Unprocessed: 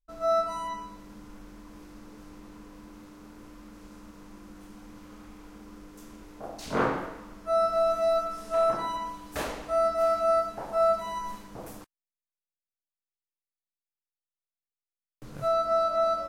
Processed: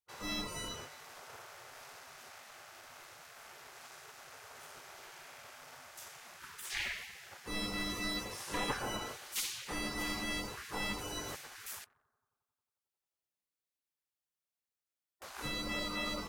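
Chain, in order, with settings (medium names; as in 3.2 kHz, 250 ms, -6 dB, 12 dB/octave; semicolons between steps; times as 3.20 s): bucket-brigade echo 90 ms, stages 1024, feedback 71%, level -19 dB; waveshaping leveller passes 1; spectral gate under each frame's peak -20 dB weak; trim +3 dB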